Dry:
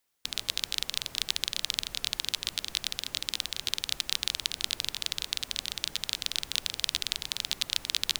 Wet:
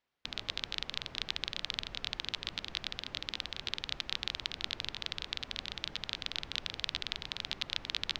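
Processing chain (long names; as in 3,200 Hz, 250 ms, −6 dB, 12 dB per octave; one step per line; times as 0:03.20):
high-frequency loss of the air 230 metres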